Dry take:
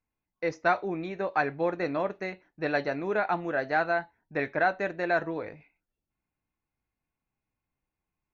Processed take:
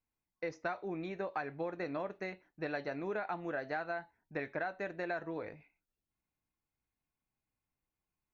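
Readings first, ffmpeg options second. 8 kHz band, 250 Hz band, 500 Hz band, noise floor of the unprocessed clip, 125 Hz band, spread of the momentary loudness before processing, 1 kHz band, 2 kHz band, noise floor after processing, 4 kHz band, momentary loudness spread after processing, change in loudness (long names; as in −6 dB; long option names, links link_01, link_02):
can't be measured, −8.0 dB, −9.5 dB, below −85 dBFS, −8.0 dB, 9 LU, −12.0 dB, −11.0 dB, below −85 dBFS, −10.0 dB, 5 LU, −10.5 dB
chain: -af "acompressor=threshold=-29dB:ratio=6,volume=-5dB"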